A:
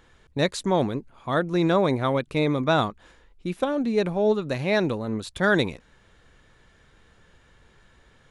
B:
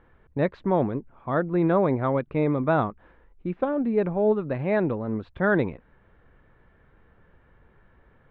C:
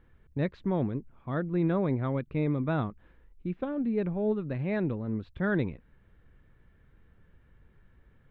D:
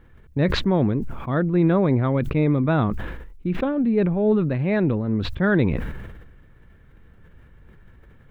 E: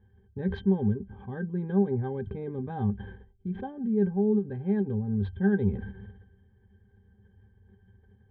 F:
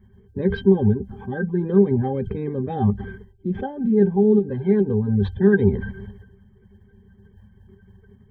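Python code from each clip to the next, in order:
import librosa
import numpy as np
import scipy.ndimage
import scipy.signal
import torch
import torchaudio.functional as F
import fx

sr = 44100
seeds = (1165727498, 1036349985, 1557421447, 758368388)

y1 = scipy.signal.sosfilt(scipy.signal.bessel(4, 1500.0, 'lowpass', norm='mag', fs=sr, output='sos'), x)
y2 = fx.peak_eq(y1, sr, hz=820.0, db=-11.5, octaves=2.6)
y3 = fx.sustainer(y2, sr, db_per_s=41.0)
y3 = y3 * librosa.db_to_amplitude(8.5)
y4 = fx.octave_resonator(y3, sr, note='G', decay_s=0.1)
y4 = fx.end_taper(y4, sr, db_per_s=260.0)
y5 = fx.spec_quant(y4, sr, step_db=30)
y5 = y5 * librosa.db_to_amplitude(9.0)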